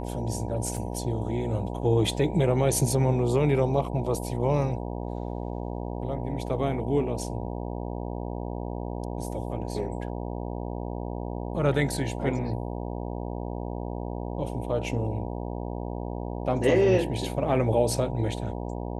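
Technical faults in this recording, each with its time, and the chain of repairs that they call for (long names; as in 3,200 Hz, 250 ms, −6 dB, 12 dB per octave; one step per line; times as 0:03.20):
mains buzz 60 Hz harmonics 16 −33 dBFS
0:00.77: drop-out 2.4 ms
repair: hum removal 60 Hz, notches 16
repair the gap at 0:00.77, 2.4 ms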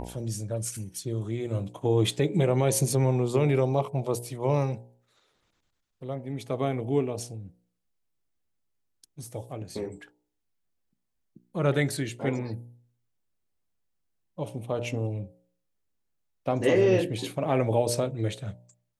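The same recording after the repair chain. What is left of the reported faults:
none of them is left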